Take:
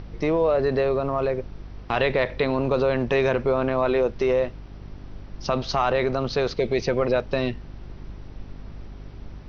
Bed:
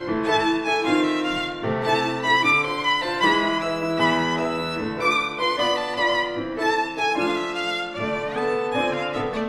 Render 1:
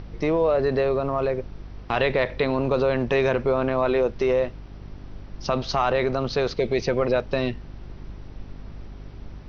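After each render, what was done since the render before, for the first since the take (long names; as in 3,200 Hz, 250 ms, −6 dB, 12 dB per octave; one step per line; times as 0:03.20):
no processing that can be heard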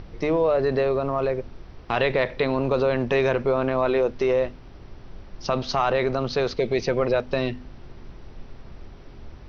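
hum removal 50 Hz, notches 6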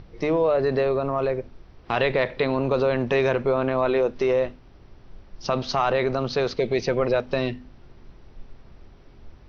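noise reduction from a noise print 6 dB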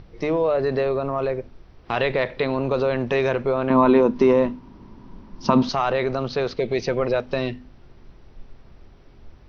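0:03.70–0:05.69: hollow resonant body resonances 230/960 Hz, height 16 dB, ringing for 30 ms
0:06.28–0:06.69: high-frequency loss of the air 66 metres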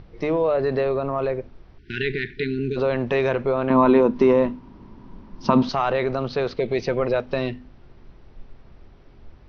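0:01.78–0:02.77: time-frequency box erased 450–1,400 Hz
Bessel low-pass filter 4,600 Hz, order 2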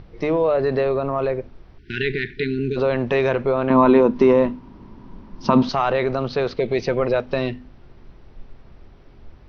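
level +2 dB
brickwall limiter −1 dBFS, peak gain reduction 1.5 dB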